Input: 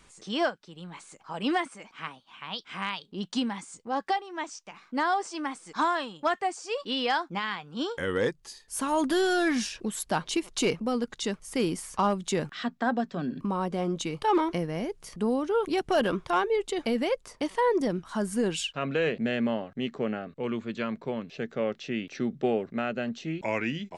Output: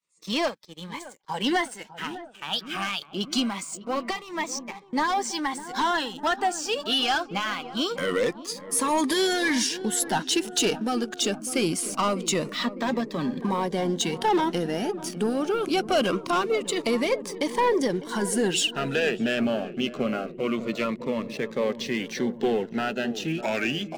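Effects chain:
spectral magnitudes quantised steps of 15 dB
downward expander −44 dBFS
high-pass filter 130 Hz 12 dB per octave
low-shelf EQ 490 Hz −8 dB
leveller curve on the samples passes 2
in parallel at −3 dB: downward compressor, threshold −30 dBFS, peak gain reduction 9.5 dB
on the sum: feedback echo with a low-pass in the loop 602 ms, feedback 80%, low-pass 960 Hz, level −13 dB
phaser whose notches keep moving one way falling 0.24 Hz

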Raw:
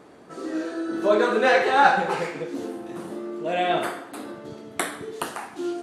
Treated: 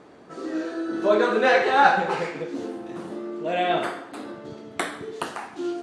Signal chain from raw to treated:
low-pass filter 7,100 Hz 12 dB per octave

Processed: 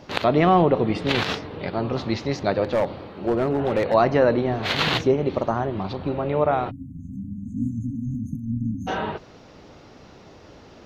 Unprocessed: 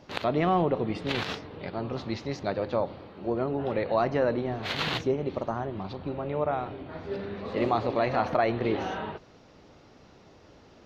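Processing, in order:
0:02.64–0:03.94: hard clipping −23 dBFS, distortion −22 dB
0:06.70–0:08.88: time-frequency box erased 280–6,200 Hz
level +7.5 dB

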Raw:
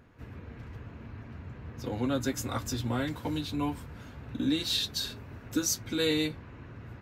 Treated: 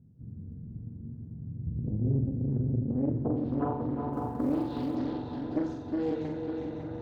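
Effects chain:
0:01.66–0:02.33: RIAA equalisation playback
low-pass filter sweep 170 Hz → 820 Hz, 0:02.81–0:03.56
0:05.74–0:06.25: parametric band 750 Hz −13 dB 2.7 octaves
echo machine with several playback heads 183 ms, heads second and third, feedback 59%, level −7 dB
downward compressor 3 to 1, threshold −26 dBFS, peak gain reduction 7.5 dB
notch comb filter 1,100 Hz
on a send: flutter between parallel walls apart 7.5 metres, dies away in 0.65 s
0:04.13–0:04.96: on the sum: log-companded quantiser 8 bits
highs frequency-modulated by the lows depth 0.65 ms

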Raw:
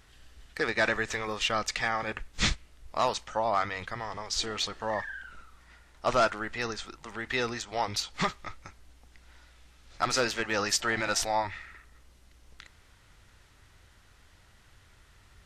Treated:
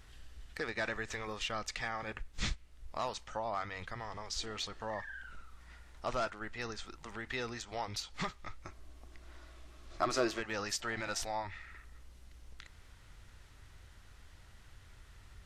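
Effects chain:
low-shelf EQ 100 Hz +7 dB
0:06.26–0:06.68: downward expander −32 dBFS
downward compressor 1.5 to 1, threshold −47 dBFS, peak gain reduction 10.5 dB
0:08.63–0:10.38: hollow resonant body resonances 350/630/1,100 Hz, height 10 dB → 14 dB, ringing for 35 ms
level −1.5 dB

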